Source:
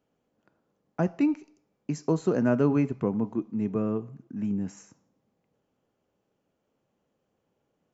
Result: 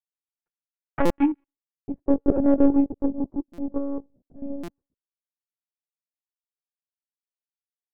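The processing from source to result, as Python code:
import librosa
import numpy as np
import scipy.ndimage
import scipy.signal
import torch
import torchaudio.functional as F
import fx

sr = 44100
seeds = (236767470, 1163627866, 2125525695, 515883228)

p1 = fx.power_curve(x, sr, exponent=2.0)
p2 = fx.filter_sweep_lowpass(p1, sr, from_hz=2000.0, to_hz=540.0, start_s=1.34, end_s=1.9, q=1.2)
p3 = np.clip(10.0 ** (18.0 / 20.0) * p2, -1.0, 1.0) / 10.0 ** (18.0 / 20.0)
p4 = p2 + F.gain(torch.from_numpy(p3), -11.5).numpy()
p5 = fx.env_lowpass_down(p4, sr, base_hz=450.0, full_db=-26.0, at=(2.94, 3.69))
p6 = fx.lpc_monotone(p5, sr, seeds[0], pitch_hz=280.0, order=16)
p7 = fx.buffer_glitch(p6, sr, at_s=(1.05, 3.53, 4.63), block=256, repeats=8)
y = F.gain(torch.from_numpy(p7), 8.0).numpy()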